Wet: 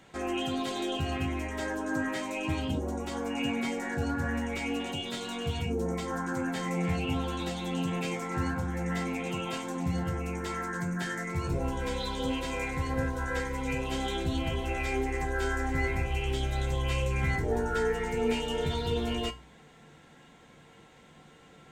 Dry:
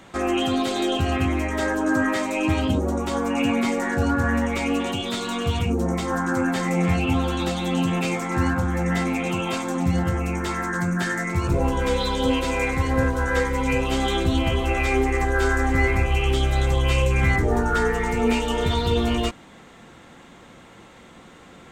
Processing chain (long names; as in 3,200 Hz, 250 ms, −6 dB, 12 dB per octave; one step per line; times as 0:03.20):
notch filter 1,200 Hz, Q 6.2
tuned comb filter 150 Hz, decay 0.23 s, harmonics odd, mix 70%
hum removal 61.94 Hz, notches 17